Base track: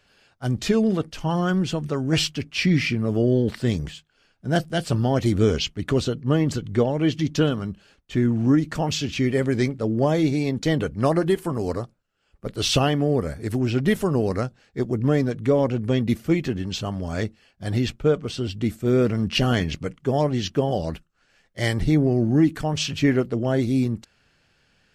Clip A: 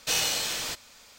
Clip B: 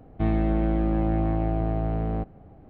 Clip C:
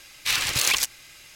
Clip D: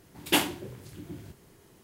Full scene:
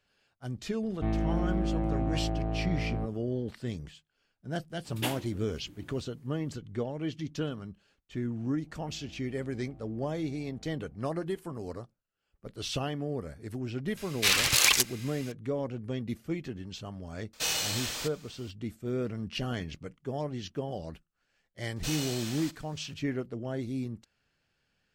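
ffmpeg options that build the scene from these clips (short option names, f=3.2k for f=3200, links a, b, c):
-filter_complex "[2:a]asplit=2[a][b];[1:a]asplit=2[c][d];[0:a]volume=-13dB[e];[4:a]agate=range=-33dB:threshold=-55dB:ratio=3:release=100:detection=peak[f];[b]acompressor=threshold=-36dB:ratio=6:attack=3.2:release=140:knee=1:detection=peak[g];[a]atrim=end=2.69,asetpts=PTS-STARTPTS,volume=-6dB,afade=t=in:d=0.004:c=hsin,afade=t=out:st=2.686:d=0.004:c=hsin,adelay=820[h];[f]atrim=end=1.83,asetpts=PTS-STARTPTS,volume=-9.5dB,afade=t=in:d=0.004:c=hsin,afade=t=out:st=1.826:d=0.004:c=hsin,adelay=4700[i];[g]atrim=end=2.69,asetpts=PTS-STARTPTS,volume=-16.5dB,afade=t=in:d=0.004:c=hsin,afade=t=out:st=2.686:d=0.004:c=hsin,adelay=8540[j];[3:a]atrim=end=1.35,asetpts=PTS-STARTPTS,volume=-0.5dB,afade=t=in:d=0.004:c=hsin,afade=t=out:st=1.346:d=0.004:c=hsin,adelay=13970[k];[c]atrim=end=1.18,asetpts=PTS-STARTPTS,volume=-4dB,afade=t=in:d=0.004:c=hsin,afade=t=out:st=1.176:d=0.004:c=hsin,adelay=17330[l];[d]atrim=end=1.18,asetpts=PTS-STARTPTS,volume=-10dB,afade=t=in:d=0.004:c=hsin,afade=t=out:st=1.176:d=0.004:c=hsin,adelay=21760[m];[e][h][i][j][k][l][m]amix=inputs=7:normalize=0"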